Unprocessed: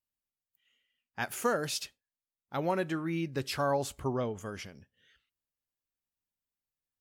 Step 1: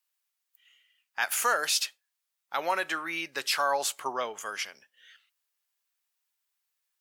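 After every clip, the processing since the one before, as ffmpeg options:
ffmpeg -i in.wav -filter_complex "[0:a]highpass=1000,asplit=2[link_01][link_02];[link_02]alimiter=level_in=6dB:limit=-24dB:level=0:latency=1,volume=-6dB,volume=0dB[link_03];[link_01][link_03]amix=inputs=2:normalize=0,volume=5dB" out.wav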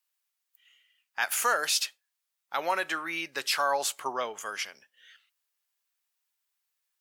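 ffmpeg -i in.wav -af anull out.wav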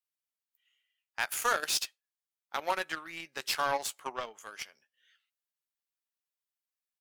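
ffmpeg -i in.wav -filter_complex "[0:a]asplit=2[link_01][link_02];[link_02]adelay=13,volume=-10.5dB[link_03];[link_01][link_03]amix=inputs=2:normalize=0,aeval=exprs='0.237*(cos(1*acos(clip(val(0)/0.237,-1,1)))-cos(1*PI/2))+0.0237*(cos(7*acos(clip(val(0)/0.237,-1,1)))-cos(7*PI/2))':channel_layout=same,volume=-2.5dB" out.wav

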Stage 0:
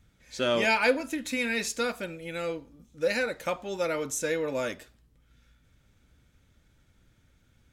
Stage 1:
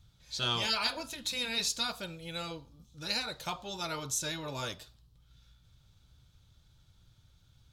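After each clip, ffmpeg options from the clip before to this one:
ffmpeg -i in.wav -af "afftfilt=real='re*lt(hypot(re,im),0.251)':imag='im*lt(hypot(re,im),0.251)':win_size=1024:overlap=0.75,equalizer=frequency=125:width_type=o:width=1:gain=6,equalizer=frequency=250:width_type=o:width=1:gain=-10,equalizer=frequency=500:width_type=o:width=1:gain=-6,equalizer=frequency=1000:width_type=o:width=1:gain=3,equalizer=frequency=2000:width_type=o:width=1:gain=-12,equalizer=frequency=4000:width_type=o:width=1:gain=10,equalizer=frequency=8000:width_type=o:width=1:gain=-3" out.wav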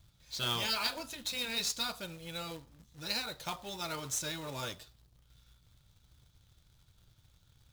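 ffmpeg -i in.wav -af "acrusher=bits=2:mode=log:mix=0:aa=0.000001,volume=-2.5dB" out.wav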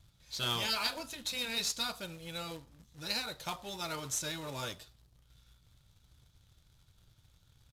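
ffmpeg -i in.wav -af "aresample=32000,aresample=44100" out.wav

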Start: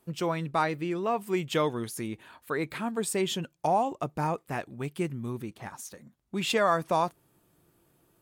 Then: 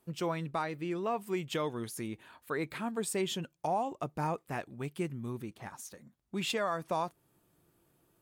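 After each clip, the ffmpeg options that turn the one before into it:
ffmpeg -i in.wav -af "alimiter=limit=-18.5dB:level=0:latency=1:release=288,volume=-4dB" out.wav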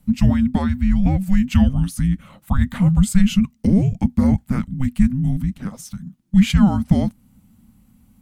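ffmpeg -i in.wav -af "afreqshift=-390,lowshelf=frequency=270:width_type=q:width=3:gain=9.5,volume=8.5dB" out.wav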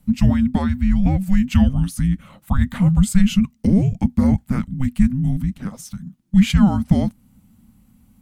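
ffmpeg -i in.wav -af anull out.wav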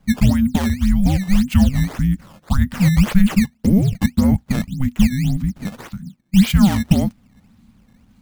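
ffmpeg -i in.wav -af "acrusher=samples=13:mix=1:aa=0.000001:lfo=1:lforange=20.8:lforate=1.8,volume=1dB" out.wav

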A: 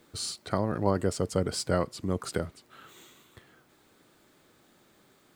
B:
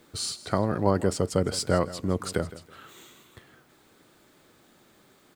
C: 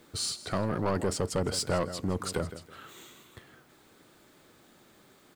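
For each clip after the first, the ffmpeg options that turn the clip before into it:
ffmpeg -i in.wav -af "aecho=1:1:162|324:0.141|0.0367,volume=3dB" out.wav
ffmpeg -i in.wav -af "asoftclip=type=tanh:threshold=-21.5dB" out.wav

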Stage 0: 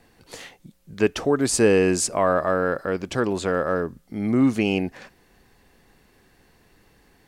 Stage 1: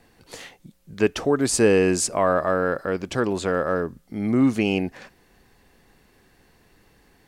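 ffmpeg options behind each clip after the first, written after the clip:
ffmpeg -i in.wav -af anull out.wav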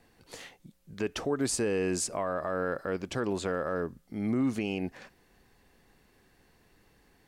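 ffmpeg -i in.wav -af "alimiter=limit=-14.5dB:level=0:latency=1:release=69,volume=-6dB" out.wav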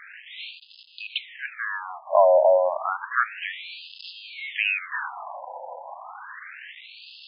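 ffmpeg -i in.wav -af "aeval=exprs='val(0)+0.5*0.0133*sgn(val(0))':channel_layout=same,dynaudnorm=framelen=300:gausssize=11:maxgain=10dB,afftfilt=real='re*between(b*sr/1024,700*pow(3700/700,0.5+0.5*sin(2*PI*0.31*pts/sr))/1.41,700*pow(3700/700,0.5+0.5*sin(2*PI*0.31*pts/sr))*1.41)':imag='im*between(b*sr/1024,700*pow(3700/700,0.5+0.5*sin(2*PI*0.31*pts/sr))/1.41,700*pow(3700/700,0.5+0.5*sin(2*PI*0.31*pts/sr))*1.41)':win_size=1024:overlap=0.75,volume=7dB" out.wav

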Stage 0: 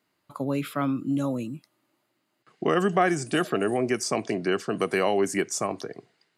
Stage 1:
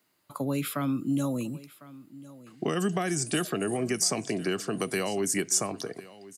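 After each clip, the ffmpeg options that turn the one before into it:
ffmpeg -i in.wav -filter_complex "[0:a]acrossover=split=260|3000[link_01][link_02][link_03];[link_02]acompressor=threshold=-30dB:ratio=6[link_04];[link_01][link_04][link_03]amix=inputs=3:normalize=0,highshelf=frequency=6500:gain=11,aecho=1:1:1052:0.112" out.wav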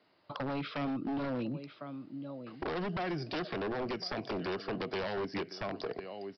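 ffmpeg -i in.wav -af "equalizer=frequency=600:width_type=o:width=1.4:gain=7.5,acompressor=threshold=-38dB:ratio=2,aresample=11025,aeval=exprs='0.0266*(abs(mod(val(0)/0.0266+3,4)-2)-1)':channel_layout=same,aresample=44100,volume=2dB" out.wav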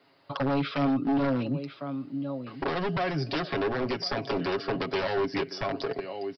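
ffmpeg -i in.wav -af "aecho=1:1:7.3:0.65,volume=5.5dB" out.wav

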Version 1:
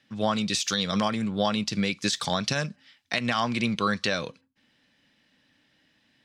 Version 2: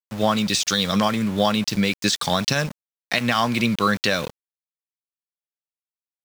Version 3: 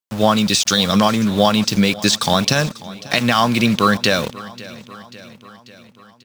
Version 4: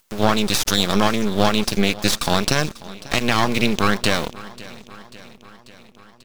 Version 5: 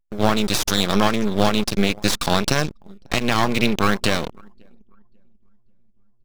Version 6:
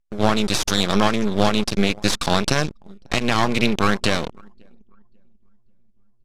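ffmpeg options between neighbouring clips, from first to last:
ffmpeg -i in.wav -af "aeval=exprs='val(0)*gte(abs(val(0)),0.0158)':channel_layout=same,volume=5.5dB" out.wav
ffmpeg -i in.wav -af "equalizer=frequency=2000:width=2.8:gain=-3.5,aecho=1:1:541|1082|1623|2164|2705:0.112|0.0673|0.0404|0.0242|0.0145,volume=5.5dB" out.wav
ffmpeg -i in.wav -af "aeval=exprs='max(val(0),0)':channel_layout=same,acompressor=mode=upward:threshold=-39dB:ratio=2.5" out.wav
ffmpeg -i in.wav -filter_complex "[0:a]anlmdn=63.1,asplit=2[link_01][link_02];[link_02]acrusher=samples=15:mix=1:aa=0.000001:lfo=1:lforange=24:lforate=0.75,volume=-12dB[link_03];[link_01][link_03]amix=inputs=2:normalize=0,volume=-2dB" out.wav
ffmpeg -i in.wav -af "lowpass=10000" out.wav

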